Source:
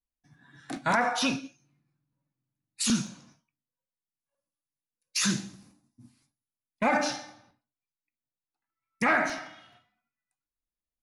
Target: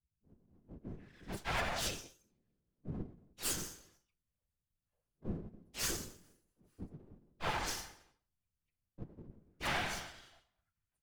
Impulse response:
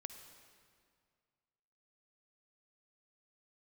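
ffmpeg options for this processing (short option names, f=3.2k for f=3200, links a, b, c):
-filter_complex "[0:a]alimiter=limit=-21dB:level=0:latency=1:release=77,lowshelf=f=79:g=9.5,afftfilt=real='hypot(re,im)*cos(PI*b)':imag='0':win_size=1024:overlap=0.75,aresample=32000,aresample=44100,acrossover=split=210|3800[a][b][c];[b]adelay=610[d];[c]adelay=650[e];[a][d][e]amix=inputs=3:normalize=0,aeval=exprs='max(val(0),0)':c=same,afftfilt=real='hypot(re,im)*cos(2*PI*random(0))':imag='hypot(re,im)*sin(2*PI*random(1))':win_size=512:overlap=0.75,asplit=3[f][g][h];[g]asetrate=52444,aresample=44100,atempo=0.840896,volume=-6dB[i];[h]asetrate=66075,aresample=44100,atempo=0.66742,volume=-8dB[j];[f][i][j]amix=inputs=3:normalize=0,adynamicequalizer=threshold=0.001:dfrequency=3200:dqfactor=0.7:tfrequency=3200:tqfactor=0.7:attack=5:release=100:ratio=0.375:range=2.5:mode=boostabove:tftype=highshelf,volume=5.5dB"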